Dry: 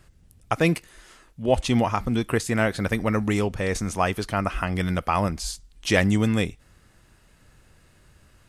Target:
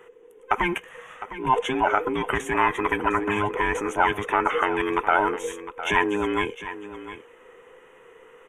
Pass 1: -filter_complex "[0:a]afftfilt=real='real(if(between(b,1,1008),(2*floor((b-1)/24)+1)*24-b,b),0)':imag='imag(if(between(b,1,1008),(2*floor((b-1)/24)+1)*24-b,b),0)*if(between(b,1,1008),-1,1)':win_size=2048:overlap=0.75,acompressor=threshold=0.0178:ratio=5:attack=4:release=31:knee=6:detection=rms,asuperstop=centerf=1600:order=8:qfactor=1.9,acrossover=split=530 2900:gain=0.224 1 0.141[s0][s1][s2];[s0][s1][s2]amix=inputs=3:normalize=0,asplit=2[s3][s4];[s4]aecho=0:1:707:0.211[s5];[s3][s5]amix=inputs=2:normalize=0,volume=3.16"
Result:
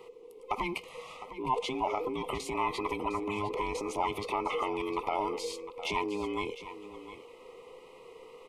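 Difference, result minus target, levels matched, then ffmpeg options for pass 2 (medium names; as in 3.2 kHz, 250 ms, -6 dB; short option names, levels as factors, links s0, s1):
compression: peak gain reduction +9 dB; 2 kHz band -5.0 dB
-filter_complex "[0:a]afftfilt=real='real(if(between(b,1,1008),(2*floor((b-1)/24)+1)*24-b,b),0)':imag='imag(if(between(b,1,1008),(2*floor((b-1)/24)+1)*24-b,b),0)*if(between(b,1,1008),-1,1)':win_size=2048:overlap=0.75,acompressor=threshold=0.0668:ratio=5:attack=4:release=31:knee=6:detection=rms,asuperstop=centerf=4600:order=8:qfactor=1.9,acrossover=split=530 2900:gain=0.224 1 0.141[s0][s1][s2];[s0][s1][s2]amix=inputs=3:normalize=0,asplit=2[s3][s4];[s4]aecho=0:1:707:0.211[s5];[s3][s5]amix=inputs=2:normalize=0,volume=3.16"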